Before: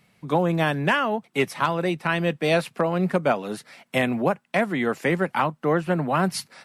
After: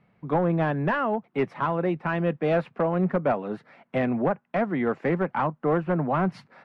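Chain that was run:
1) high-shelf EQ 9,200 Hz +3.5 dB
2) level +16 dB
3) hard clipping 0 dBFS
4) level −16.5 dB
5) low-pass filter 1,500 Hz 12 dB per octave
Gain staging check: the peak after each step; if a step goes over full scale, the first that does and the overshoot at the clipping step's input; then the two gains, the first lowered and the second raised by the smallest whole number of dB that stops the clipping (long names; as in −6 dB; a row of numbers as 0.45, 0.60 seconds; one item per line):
−9.0, +7.0, 0.0, −16.5, −16.0 dBFS
step 2, 7.0 dB
step 2 +9 dB, step 4 −9.5 dB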